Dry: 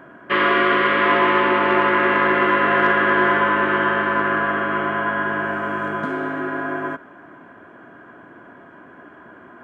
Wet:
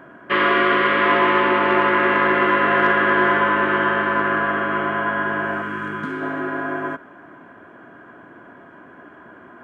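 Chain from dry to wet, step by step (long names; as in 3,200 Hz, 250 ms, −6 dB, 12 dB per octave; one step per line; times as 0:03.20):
0:05.62–0:06.22: parametric band 660 Hz −14 dB 0.81 octaves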